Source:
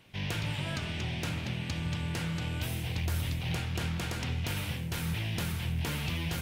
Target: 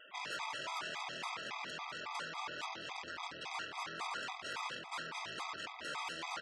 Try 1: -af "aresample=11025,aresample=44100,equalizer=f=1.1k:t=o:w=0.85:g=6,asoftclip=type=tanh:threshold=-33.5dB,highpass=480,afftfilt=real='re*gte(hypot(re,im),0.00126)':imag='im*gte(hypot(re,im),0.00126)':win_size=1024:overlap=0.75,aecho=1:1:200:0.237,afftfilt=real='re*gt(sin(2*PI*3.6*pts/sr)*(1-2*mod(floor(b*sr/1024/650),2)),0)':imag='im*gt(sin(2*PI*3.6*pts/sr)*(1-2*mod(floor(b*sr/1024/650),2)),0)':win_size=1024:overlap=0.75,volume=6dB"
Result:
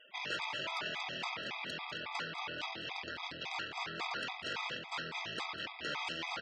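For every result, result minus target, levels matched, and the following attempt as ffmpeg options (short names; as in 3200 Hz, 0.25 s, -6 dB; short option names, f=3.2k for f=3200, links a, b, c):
soft clip: distortion -6 dB; 1000 Hz band -2.5 dB
-af "aresample=11025,aresample=44100,equalizer=f=1.1k:t=o:w=0.85:g=6,asoftclip=type=tanh:threshold=-41dB,highpass=480,afftfilt=real='re*gte(hypot(re,im),0.00126)':imag='im*gte(hypot(re,im),0.00126)':win_size=1024:overlap=0.75,aecho=1:1:200:0.237,afftfilt=real='re*gt(sin(2*PI*3.6*pts/sr)*(1-2*mod(floor(b*sr/1024/650),2)),0)':imag='im*gt(sin(2*PI*3.6*pts/sr)*(1-2*mod(floor(b*sr/1024/650),2)),0)':win_size=1024:overlap=0.75,volume=6dB"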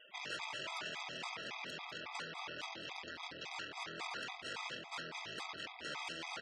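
1000 Hz band -3.0 dB
-af "aresample=11025,aresample=44100,equalizer=f=1.1k:t=o:w=0.85:g=15.5,asoftclip=type=tanh:threshold=-41dB,highpass=480,afftfilt=real='re*gte(hypot(re,im),0.00126)':imag='im*gte(hypot(re,im),0.00126)':win_size=1024:overlap=0.75,aecho=1:1:200:0.237,afftfilt=real='re*gt(sin(2*PI*3.6*pts/sr)*(1-2*mod(floor(b*sr/1024/650),2)),0)':imag='im*gt(sin(2*PI*3.6*pts/sr)*(1-2*mod(floor(b*sr/1024/650),2)),0)':win_size=1024:overlap=0.75,volume=6dB"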